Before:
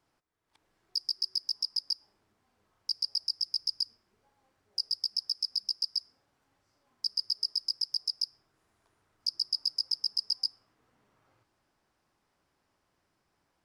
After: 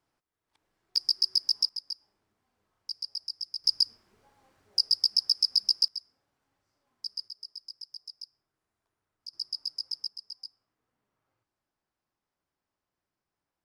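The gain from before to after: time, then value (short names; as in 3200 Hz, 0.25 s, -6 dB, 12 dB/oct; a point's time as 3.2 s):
-4 dB
from 0.96 s +6 dB
from 1.69 s -4.5 dB
from 3.64 s +7 dB
from 5.88 s -5 dB
from 7.28 s -12 dB
from 9.33 s -4 dB
from 10.08 s -12 dB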